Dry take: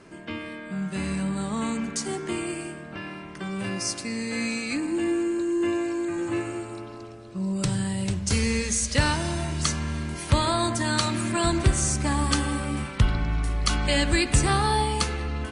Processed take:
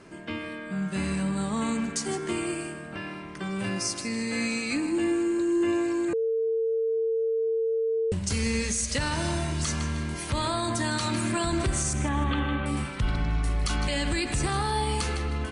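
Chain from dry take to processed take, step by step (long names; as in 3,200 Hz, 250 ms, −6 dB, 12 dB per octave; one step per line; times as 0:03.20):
0:11.93–0:12.66: Butterworth low-pass 3,700 Hz 72 dB per octave
feedback echo with a high-pass in the loop 155 ms, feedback 29%, level −15 dB
brickwall limiter −18 dBFS, peak gain reduction 10 dB
0:06.13–0:08.12: beep over 451 Hz −23 dBFS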